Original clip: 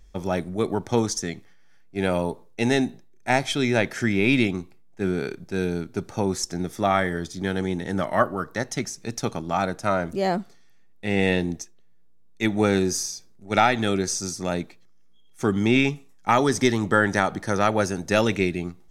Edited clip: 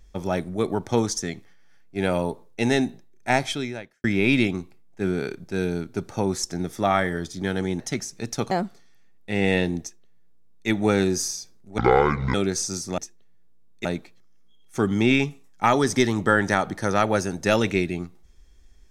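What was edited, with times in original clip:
3.45–4.04 fade out quadratic
7.8–8.65 cut
9.36–10.26 cut
11.56–12.43 copy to 14.5
13.53–13.86 speed 59%

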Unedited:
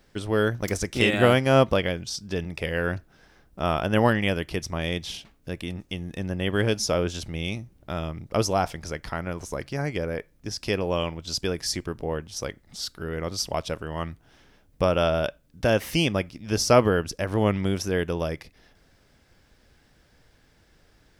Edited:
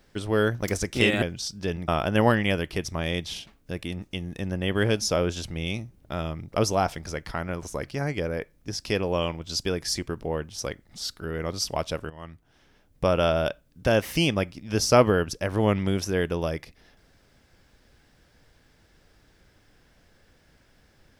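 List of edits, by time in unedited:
1.22–1.9 cut
2.56–3.66 cut
13.88–14.94 fade in, from -14 dB

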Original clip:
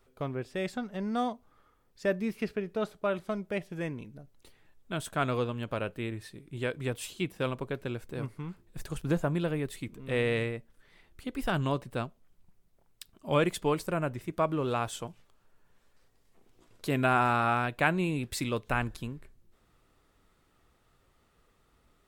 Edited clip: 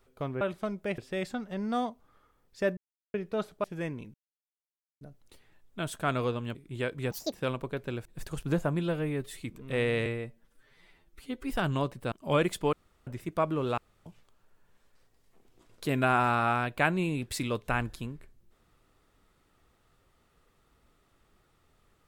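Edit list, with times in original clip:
2.2–2.57 mute
3.07–3.64 move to 0.41
4.14 insert silence 0.87 s
5.68–6.37 cut
6.93–7.3 speed 174%
8.03–8.64 cut
9.38–9.79 stretch 1.5×
10.44–11.4 stretch 1.5×
12.02–13.13 cut
13.74–14.08 room tone
14.79–15.07 room tone

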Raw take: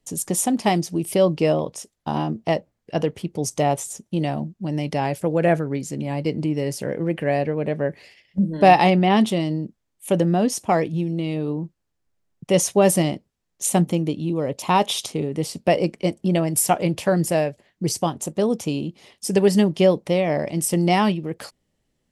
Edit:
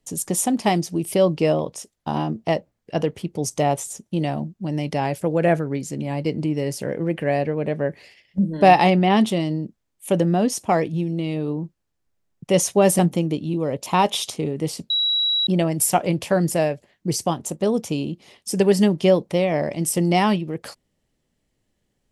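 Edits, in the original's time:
12.99–13.75 cut
15.66–16.23 bleep 3890 Hz -17.5 dBFS

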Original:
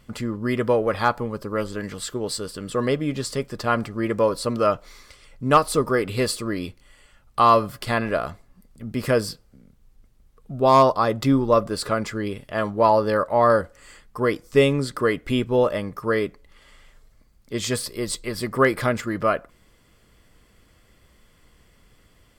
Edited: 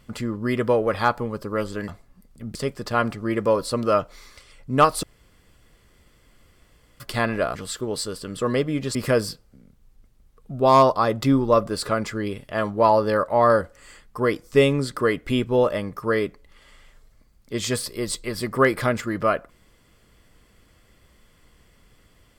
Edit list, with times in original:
1.88–3.28 swap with 8.28–8.95
5.76–7.73 room tone

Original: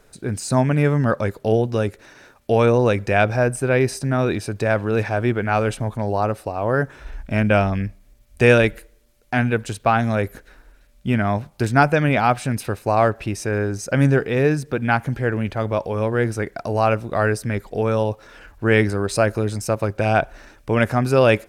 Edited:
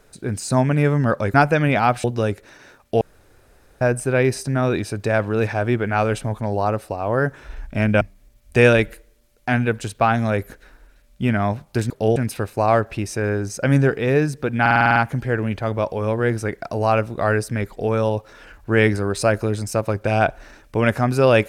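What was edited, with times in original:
1.34–1.6 swap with 11.75–12.45
2.57–3.37 room tone
7.57–7.86 cut
14.9 stutter 0.05 s, 8 plays

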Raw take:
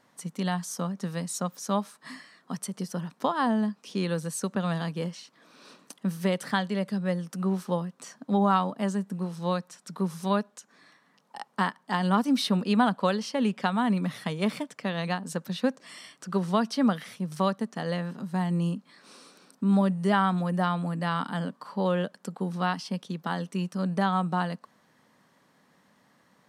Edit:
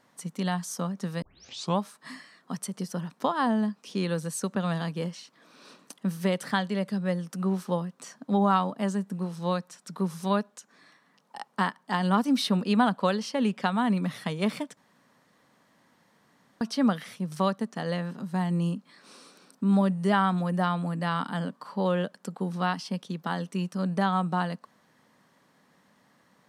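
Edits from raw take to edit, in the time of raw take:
1.22 tape start 0.57 s
14.77–16.61 room tone

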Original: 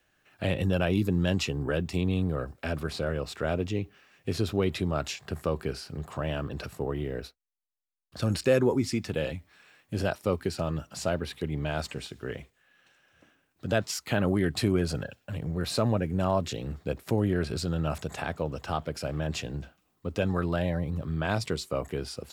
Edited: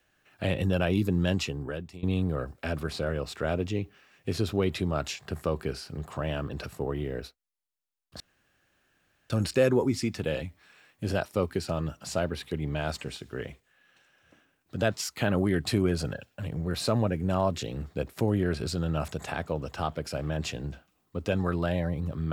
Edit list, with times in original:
1.31–2.03 fade out, to -20 dB
8.2 insert room tone 1.10 s

